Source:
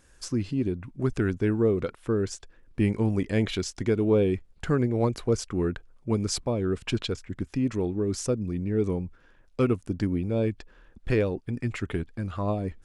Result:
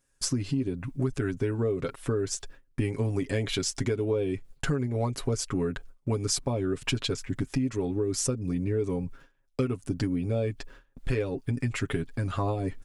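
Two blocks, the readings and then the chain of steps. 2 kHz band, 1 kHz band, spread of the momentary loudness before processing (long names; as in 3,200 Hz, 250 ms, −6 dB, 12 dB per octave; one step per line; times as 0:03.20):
0.0 dB, −1.0 dB, 9 LU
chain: noise gate with hold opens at −44 dBFS
high-shelf EQ 7,400 Hz +10 dB
comb filter 7.3 ms, depth 72%
downward compressor, threshold −29 dBFS, peak gain reduction 13.5 dB
level +4 dB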